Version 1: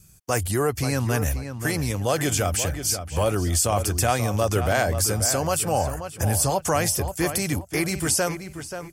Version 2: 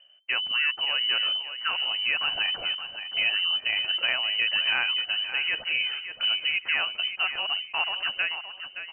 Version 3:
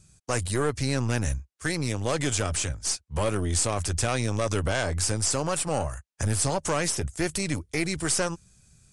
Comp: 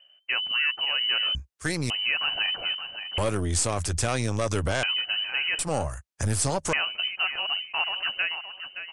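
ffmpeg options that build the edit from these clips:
-filter_complex "[2:a]asplit=3[s0][s1][s2];[1:a]asplit=4[s3][s4][s5][s6];[s3]atrim=end=1.352[s7];[s0]atrim=start=1.348:end=1.902[s8];[s4]atrim=start=1.898:end=3.182[s9];[s1]atrim=start=3.178:end=4.832[s10];[s5]atrim=start=4.828:end=5.592[s11];[s2]atrim=start=5.588:end=6.732[s12];[s6]atrim=start=6.728[s13];[s7][s8]acrossfade=d=0.004:c1=hsin:c2=hsin[s14];[s14][s9]acrossfade=d=0.004:c1=hsin:c2=hsin[s15];[s15][s10]acrossfade=d=0.004:c1=hsin:c2=hsin[s16];[s16][s11]acrossfade=d=0.004:c1=hsin:c2=hsin[s17];[s17][s12]acrossfade=d=0.004:c1=hsin:c2=hsin[s18];[s18][s13]acrossfade=d=0.004:c1=hsin:c2=hsin"

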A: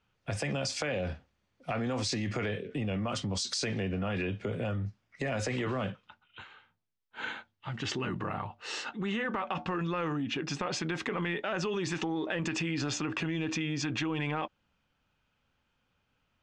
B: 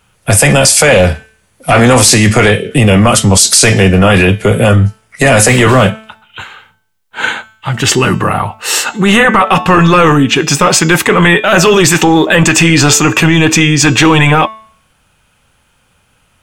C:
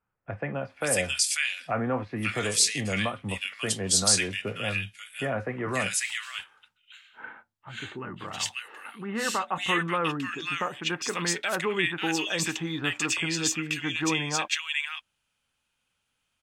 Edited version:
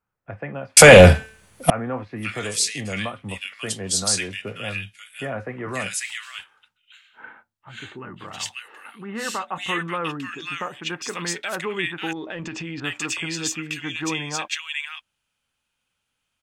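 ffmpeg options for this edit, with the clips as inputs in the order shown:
-filter_complex "[2:a]asplit=3[s0][s1][s2];[s0]atrim=end=0.772[s3];[1:a]atrim=start=0.768:end=1.702[s4];[s1]atrim=start=1.698:end=12.132[s5];[0:a]atrim=start=12.128:end=12.802[s6];[s2]atrim=start=12.798[s7];[s3][s4]acrossfade=d=0.004:c1=hsin:c2=hsin[s8];[s8][s5]acrossfade=d=0.004:c1=hsin:c2=hsin[s9];[s9][s6]acrossfade=d=0.004:c1=hsin:c2=hsin[s10];[s10][s7]acrossfade=d=0.004:c1=hsin:c2=hsin"

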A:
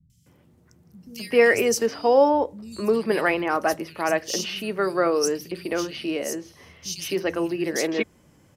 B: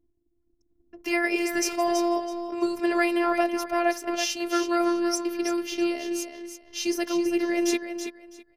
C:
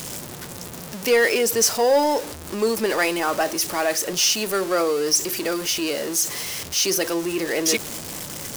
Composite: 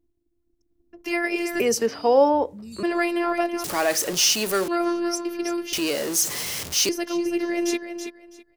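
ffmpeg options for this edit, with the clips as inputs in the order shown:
-filter_complex "[2:a]asplit=2[s0][s1];[1:a]asplit=4[s2][s3][s4][s5];[s2]atrim=end=1.602[s6];[0:a]atrim=start=1.598:end=2.832[s7];[s3]atrim=start=2.828:end=3.642[s8];[s0]atrim=start=3.638:end=4.682[s9];[s4]atrim=start=4.678:end=5.732[s10];[s1]atrim=start=5.728:end=6.892[s11];[s5]atrim=start=6.888[s12];[s6][s7]acrossfade=d=0.004:c1=hsin:c2=hsin[s13];[s13][s8]acrossfade=d=0.004:c1=hsin:c2=hsin[s14];[s14][s9]acrossfade=d=0.004:c1=hsin:c2=hsin[s15];[s15][s10]acrossfade=d=0.004:c1=hsin:c2=hsin[s16];[s16][s11]acrossfade=d=0.004:c1=hsin:c2=hsin[s17];[s17][s12]acrossfade=d=0.004:c1=hsin:c2=hsin"

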